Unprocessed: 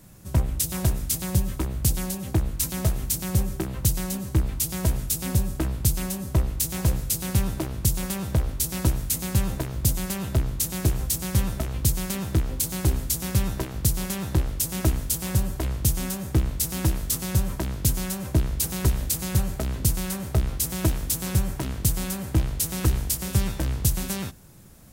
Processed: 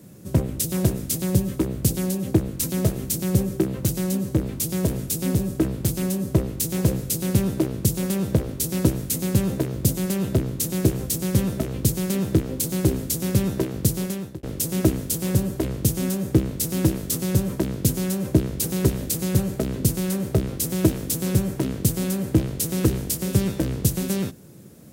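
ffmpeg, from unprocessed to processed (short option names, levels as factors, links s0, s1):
-filter_complex "[0:a]asettb=1/sr,asplit=3[s0][s1][s2];[s0]atrim=end=3.704[s3];[s1]atrim=start=3.7:end=6.22,asetpts=PTS-STARTPTS,afade=t=in:d=0.004:c=qsin,afade=t=out:st=2.516:d=0.004:c=qsin,asoftclip=type=hard:threshold=0.133[s4];[s2]atrim=start=6.216[s5];[s3][s4]acrossfade=d=0.004:c1=hsin:c2=qsin[s6];[s6][s5]acrossfade=d=0.004:c1=qsin:c2=hsin,asplit=2[s7][s8];[s7]atrim=end=14.43,asetpts=PTS-STARTPTS,afade=t=out:st=13.95:d=0.48[s9];[s8]atrim=start=14.43,asetpts=PTS-STARTPTS,afade=t=in:d=0.004:c=hsin[s10];[s9][s10]concat=n=2:v=0:a=1,highpass=140,lowshelf=f=620:t=q:w=1.5:g=7.5"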